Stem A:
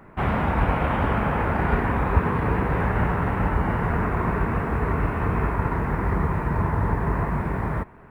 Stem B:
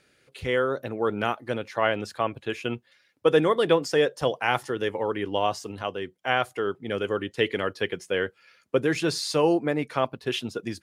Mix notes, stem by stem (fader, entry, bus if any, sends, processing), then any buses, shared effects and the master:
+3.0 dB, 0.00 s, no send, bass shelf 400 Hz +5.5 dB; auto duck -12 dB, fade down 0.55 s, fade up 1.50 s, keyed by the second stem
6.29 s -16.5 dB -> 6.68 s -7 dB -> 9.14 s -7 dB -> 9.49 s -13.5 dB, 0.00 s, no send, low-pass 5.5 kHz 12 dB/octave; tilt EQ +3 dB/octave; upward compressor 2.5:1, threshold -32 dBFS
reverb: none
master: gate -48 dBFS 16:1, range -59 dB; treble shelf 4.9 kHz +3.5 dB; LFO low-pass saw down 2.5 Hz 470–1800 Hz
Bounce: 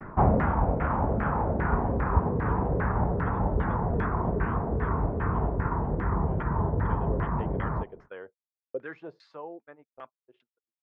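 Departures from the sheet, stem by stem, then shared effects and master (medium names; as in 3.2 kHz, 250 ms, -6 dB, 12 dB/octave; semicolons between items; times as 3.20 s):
stem B -16.5 dB -> -24.0 dB; master: missing treble shelf 4.9 kHz +3.5 dB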